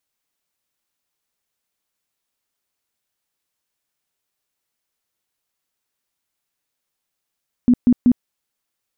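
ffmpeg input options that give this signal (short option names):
-f lavfi -i "aevalsrc='0.376*sin(2*PI*245*mod(t,0.19))*lt(mod(t,0.19),14/245)':d=0.57:s=44100"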